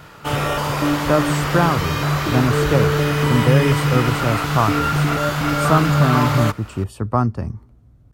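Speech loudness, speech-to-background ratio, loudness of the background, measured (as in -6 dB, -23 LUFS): -21.0 LUFS, -1.5 dB, -19.5 LUFS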